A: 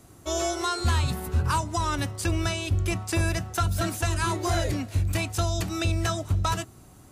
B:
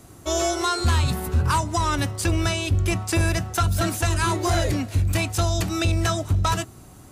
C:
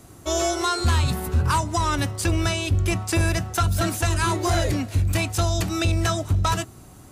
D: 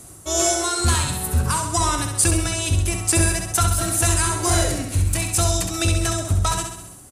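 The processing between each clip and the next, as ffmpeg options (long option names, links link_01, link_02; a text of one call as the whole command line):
ffmpeg -i in.wav -af "asoftclip=type=tanh:threshold=-17dB,volume=5dB" out.wav
ffmpeg -i in.wav -af anull out.wav
ffmpeg -i in.wav -filter_complex "[0:a]tremolo=f=2.2:d=0.45,equalizer=frequency=9200:width=1.1:gain=14,asplit=2[link_01][link_02];[link_02]aecho=0:1:66|132|198|264|330|396|462:0.501|0.276|0.152|0.0834|0.0459|0.0252|0.0139[link_03];[link_01][link_03]amix=inputs=2:normalize=0,volume=1dB" out.wav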